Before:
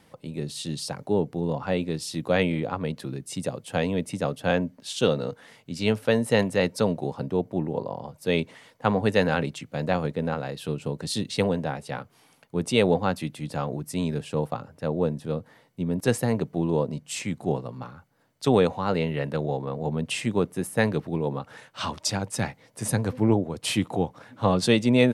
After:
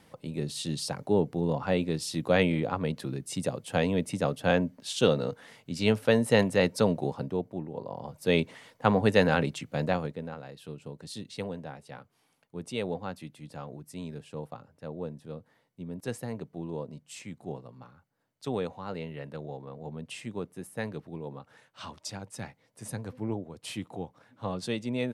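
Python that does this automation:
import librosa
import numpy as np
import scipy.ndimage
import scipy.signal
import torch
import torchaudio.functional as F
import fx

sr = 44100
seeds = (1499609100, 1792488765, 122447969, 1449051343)

y = fx.gain(x, sr, db=fx.line((7.08, -1.0), (7.7, -10.5), (8.12, -0.5), (9.81, -0.5), (10.3, -12.0)))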